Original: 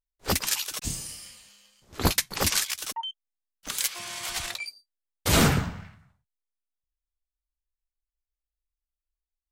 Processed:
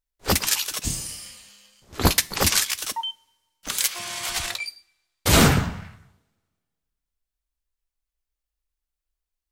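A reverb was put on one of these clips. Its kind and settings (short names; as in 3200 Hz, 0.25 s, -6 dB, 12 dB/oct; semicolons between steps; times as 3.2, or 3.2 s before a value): two-slope reverb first 0.49 s, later 1.7 s, from -19 dB, DRR 17.5 dB; gain +4.5 dB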